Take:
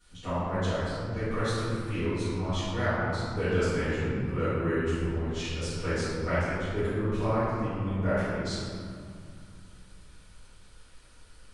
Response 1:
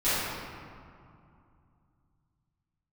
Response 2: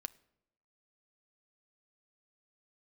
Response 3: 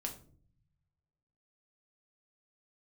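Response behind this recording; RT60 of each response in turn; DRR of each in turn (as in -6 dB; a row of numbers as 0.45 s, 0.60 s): 1; 2.5 s, 0.85 s, 0.50 s; -17.5 dB, 14.5 dB, 2.0 dB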